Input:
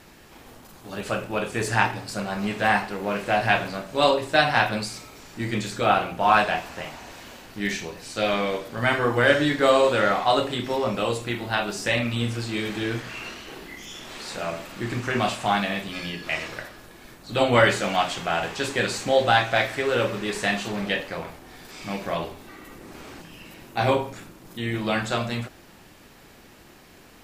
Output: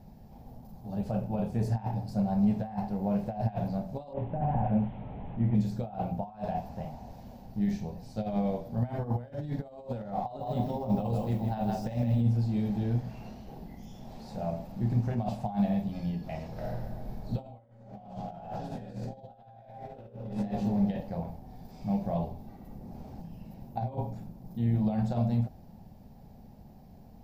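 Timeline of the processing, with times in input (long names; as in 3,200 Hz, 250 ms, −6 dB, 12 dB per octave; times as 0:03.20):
0:04.13–0:05.55: linear delta modulator 16 kbit/s, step −31 dBFS
0:10.24–0:12.21: feedback echo at a low word length 159 ms, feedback 35%, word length 7 bits, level −4.5 dB
0:16.52–0:20.33: thrown reverb, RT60 1.5 s, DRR −6.5 dB
whole clip: compressor whose output falls as the input rises −25 dBFS, ratio −0.5; drawn EQ curve 220 Hz 0 dB, 320 Hz −17 dB, 800 Hz −6 dB, 1,200 Hz −27 dB, 3,000 Hz −29 dB, 5,100 Hz −21 dB, 8,500 Hz −30 dB, 15,000 Hz −14 dB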